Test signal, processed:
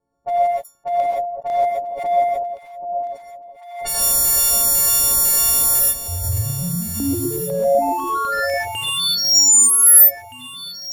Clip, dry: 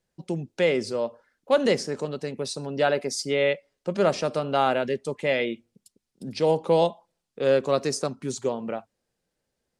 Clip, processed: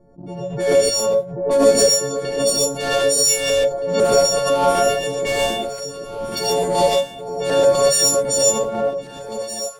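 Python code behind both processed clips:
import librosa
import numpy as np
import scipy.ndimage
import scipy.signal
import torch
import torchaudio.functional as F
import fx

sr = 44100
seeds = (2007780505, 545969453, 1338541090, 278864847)

p1 = fx.freq_snap(x, sr, grid_st=4)
p2 = fx.filter_lfo_notch(p1, sr, shape='square', hz=2.0, low_hz=290.0, high_hz=2900.0, q=0.71)
p3 = fx.low_shelf(p2, sr, hz=430.0, db=-8.0)
p4 = 10.0 ** (-17.5 / 20.0) * (np.abs((p3 / 10.0 ** (-17.5 / 20.0) + 3.0) % 4.0 - 2.0) - 1.0)
p5 = p3 + (p4 * 10.0 ** (-9.0 / 20.0))
p6 = fx.leveller(p5, sr, passes=2)
p7 = fx.env_lowpass(p6, sr, base_hz=550.0, full_db=-17.5)
p8 = fx.peak_eq(p7, sr, hz=1900.0, db=-12.5, octaves=2.6)
p9 = p8 + fx.echo_alternate(p8, sr, ms=785, hz=960.0, feedback_pct=51, wet_db=-7.0, dry=0)
p10 = fx.rev_gated(p9, sr, seeds[0], gate_ms=160, shape='rising', drr_db=-4.0)
p11 = fx.pre_swell(p10, sr, db_per_s=65.0)
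y = p11 * 10.0 ** (-1.0 / 20.0)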